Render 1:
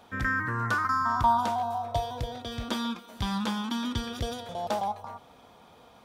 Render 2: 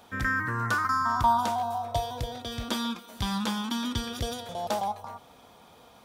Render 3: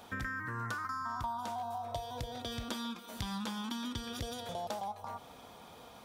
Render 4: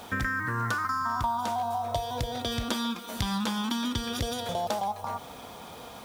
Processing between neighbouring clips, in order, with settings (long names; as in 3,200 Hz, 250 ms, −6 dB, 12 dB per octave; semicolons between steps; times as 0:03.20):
high-shelf EQ 5,300 Hz +7.5 dB
downward compressor 5 to 1, threshold −38 dBFS, peak gain reduction 17.5 dB; level +1 dB
background noise white −68 dBFS; level +9 dB